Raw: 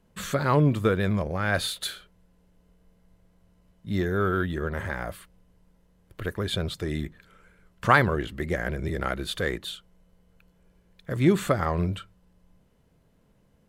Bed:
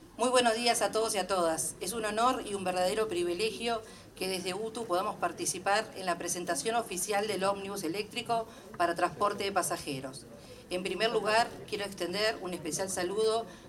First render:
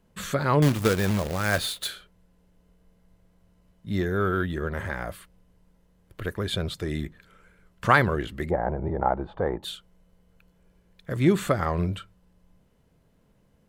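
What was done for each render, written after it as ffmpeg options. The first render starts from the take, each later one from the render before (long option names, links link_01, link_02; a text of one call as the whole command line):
ffmpeg -i in.wav -filter_complex "[0:a]asettb=1/sr,asplit=3[link_01][link_02][link_03];[link_01]atrim=end=0.624[link_04];[link_02]atrim=start=0.62:end=1.88,asetpts=PTS-STARTPTS,afade=type=in:duration=0.004:curve=qsin,afade=type=out:start_time=1.256:duration=0.004:curve=qsin,acrusher=bits=2:mode=log:mix=0:aa=0.000001[link_05];[link_03]atrim=start=1.876[link_06];[link_04][link_05]acrossfade=duration=0.004:curve1=hsin:curve2=qsin[link_07];[link_07][link_06]acrossfade=duration=0.004:curve1=qsin:curve2=hsin,asplit=3[link_08][link_09][link_10];[link_08]afade=type=out:start_time=8.49:duration=0.02[link_11];[link_09]lowpass=frequency=850:width_type=q:width=8.6,afade=type=in:start_time=8.49:duration=0.02,afade=type=out:start_time=9.62:duration=0.02[link_12];[link_10]afade=type=in:start_time=9.62:duration=0.02[link_13];[link_11][link_12][link_13]amix=inputs=3:normalize=0" out.wav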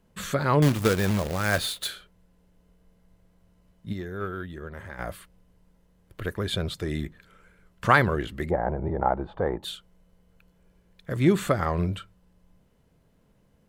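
ffmpeg -i in.wav -filter_complex "[0:a]asplit=3[link_01][link_02][link_03];[link_01]afade=type=out:start_time=3.92:duration=0.02[link_04];[link_02]agate=range=-9dB:threshold=-23dB:ratio=16:release=100:detection=peak,afade=type=in:start_time=3.92:duration=0.02,afade=type=out:start_time=4.98:duration=0.02[link_05];[link_03]afade=type=in:start_time=4.98:duration=0.02[link_06];[link_04][link_05][link_06]amix=inputs=3:normalize=0" out.wav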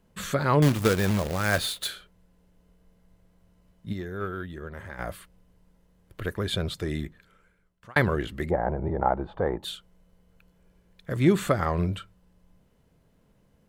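ffmpeg -i in.wav -filter_complex "[0:a]asplit=2[link_01][link_02];[link_01]atrim=end=7.96,asetpts=PTS-STARTPTS,afade=type=out:start_time=6.86:duration=1.1[link_03];[link_02]atrim=start=7.96,asetpts=PTS-STARTPTS,afade=type=in:duration=0.004:curve=hsin[link_04];[link_03][link_04]concat=n=2:v=0:a=1" out.wav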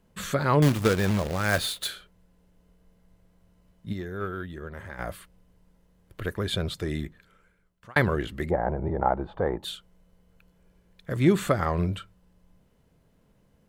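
ffmpeg -i in.wav -filter_complex "[0:a]asettb=1/sr,asplit=3[link_01][link_02][link_03];[link_01]atrim=end=0.784[link_04];[link_02]atrim=start=0.78:end=1.49,asetpts=PTS-STARTPTS,afade=type=in:duration=0.004:curve=qsin,afade=type=out:start_time=0.706:duration=0.004:curve=qsin,highshelf=frequency=8400:gain=-5.5[link_05];[link_03]atrim=start=1.486[link_06];[link_04][link_05]acrossfade=duration=0.004:curve1=hsin:curve2=qsin[link_07];[link_07][link_06]acrossfade=duration=0.004:curve1=qsin:curve2=hsin" out.wav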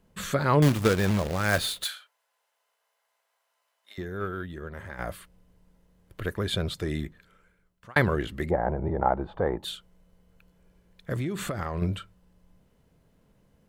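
ffmpeg -i in.wav -filter_complex "[0:a]asettb=1/sr,asplit=3[link_01][link_02][link_03];[link_01]atrim=end=1.844[link_04];[link_02]atrim=start=1.84:end=3.98,asetpts=PTS-STARTPTS,afade=type=in:duration=0.004:curve=qsin,afade=type=out:start_time=2.136:duration=0.004:curve=qsin,highpass=frequency=760:width=0.5412,highpass=frequency=760:width=1.3066[link_05];[link_03]atrim=start=3.976[link_06];[link_04][link_05]acrossfade=duration=0.004:curve1=hsin:curve2=qsin[link_07];[link_07][link_06]acrossfade=duration=0.004:curve1=qsin:curve2=hsin,asettb=1/sr,asplit=3[link_08][link_09][link_10];[link_08]atrim=end=11.174[link_11];[link_09]atrim=start=11.17:end=11.82,asetpts=PTS-STARTPTS,afade=type=in:duration=0.004:curve=qsin,afade=type=out:start_time=0.646:duration=0.004:curve=qsin,acompressor=threshold=-26dB:ratio=16:attack=3.2:release=140:knee=1:detection=peak[link_12];[link_10]atrim=start=11.816[link_13];[link_11][link_12]acrossfade=duration=0.004:curve1=hsin:curve2=qsin[link_14];[link_14][link_13]acrossfade=duration=0.004:curve1=qsin:curve2=hsin" out.wav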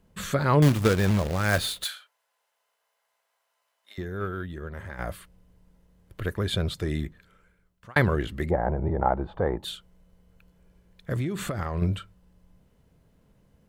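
ffmpeg -i in.wav -af "equalizer=frequency=65:width=0.53:gain=4" out.wav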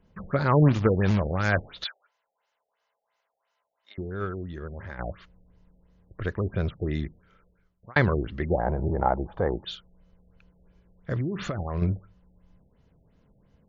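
ffmpeg -i in.wav -af "afftfilt=real='re*lt(b*sr/1024,800*pow(7300/800,0.5+0.5*sin(2*PI*2.9*pts/sr)))':imag='im*lt(b*sr/1024,800*pow(7300/800,0.5+0.5*sin(2*PI*2.9*pts/sr)))':win_size=1024:overlap=0.75" out.wav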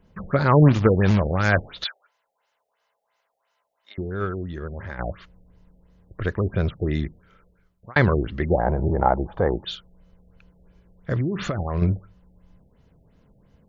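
ffmpeg -i in.wav -af "volume=4.5dB,alimiter=limit=-3dB:level=0:latency=1" out.wav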